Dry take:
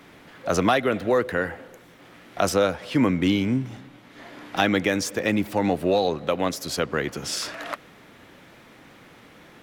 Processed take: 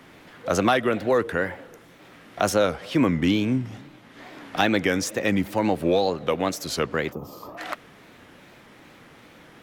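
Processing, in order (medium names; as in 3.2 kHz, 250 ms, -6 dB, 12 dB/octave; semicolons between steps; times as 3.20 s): wow and flutter 130 cents; time-frequency box 7.12–7.58 s, 1.3–12 kHz -24 dB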